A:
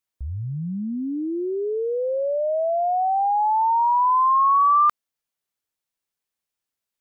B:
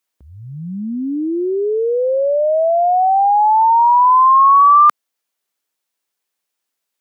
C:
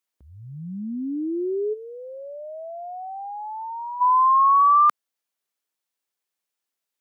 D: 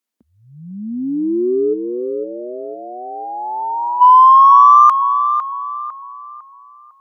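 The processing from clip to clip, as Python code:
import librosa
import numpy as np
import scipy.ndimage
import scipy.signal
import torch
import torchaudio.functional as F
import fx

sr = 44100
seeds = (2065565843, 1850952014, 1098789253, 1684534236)

y1 = scipy.signal.sosfilt(scipy.signal.butter(2, 240.0, 'highpass', fs=sr, output='sos'), x)
y1 = y1 * 10.0 ** (8.0 / 20.0)
y2 = fx.spec_box(y1, sr, start_s=1.73, length_s=2.28, low_hz=420.0, high_hz=1300.0, gain_db=-14)
y2 = y2 * 10.0 ** (-7.0 / 20.0)
y3 = fx.cheby_harmonics(y2, sr, harmonics=(5,), levels_db=(-32,), full_scale_db=-11.5)
y3 = fx.filter_sweep_highpass(y3, sr, from_hz=230.0, to_hz=950.0, start_s=0.59, end_s=2.76, q=3.5)
y3 = fx.echo_tape(y3, sr, ms=503, feedback_pct=48, wet_db=-5.5, lp_hz=1300.0, drive_db=-2.0, wow_cents=6)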